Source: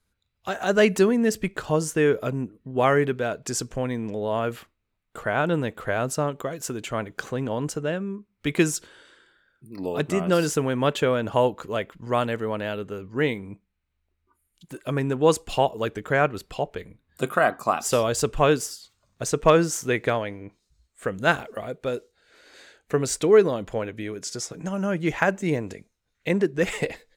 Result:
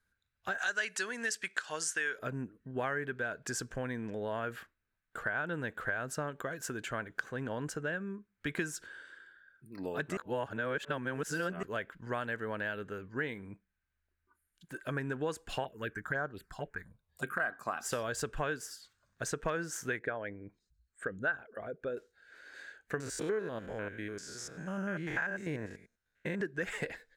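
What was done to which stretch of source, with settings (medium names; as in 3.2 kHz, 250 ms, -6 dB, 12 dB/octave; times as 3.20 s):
0.58–2.19 s: frequency weighting ITU-R 468
10.17–11.63 s: reverse
15.64–17.40 s: touch-sensitive phaser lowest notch 240 Hz, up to 2.5 kHz, full sweep at -17.5 dBFS
19.99–21.97 s: resonances exaggerated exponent 1.5
23.00–26.41 s: spectrogram pixelated in time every 100 ms
whole clip: peaking EQ 1.6 kHz +15 dB 0.4 oct; compression 4:1, threshold -24 dBFS; trim -8.5 dB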